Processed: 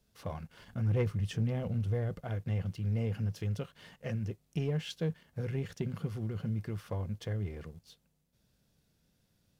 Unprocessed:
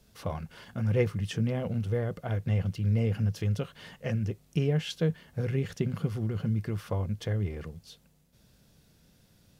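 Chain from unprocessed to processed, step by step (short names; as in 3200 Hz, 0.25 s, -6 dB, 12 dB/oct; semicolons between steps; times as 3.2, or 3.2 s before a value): 0.59–2.25 low shelf 90 Hz +12 dB; sample leveller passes 1; gain -9 dB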